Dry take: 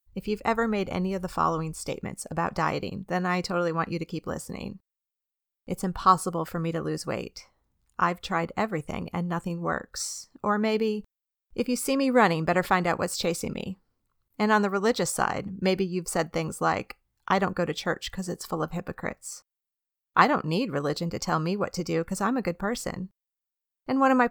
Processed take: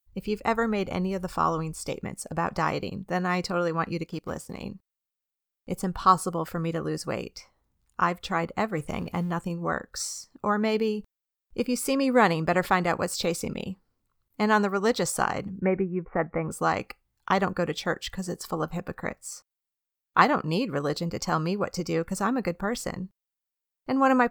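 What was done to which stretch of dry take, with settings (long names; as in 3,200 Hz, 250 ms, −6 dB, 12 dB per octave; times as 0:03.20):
0:04.07–0:04.64: mu-law and A-law mismatch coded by A
0:08.77–0:09.31: mu-law and A-law mismatch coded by mu
0:15.60–0:16.51: Butterworth low-pass 2,300 Hz 72 dB per octave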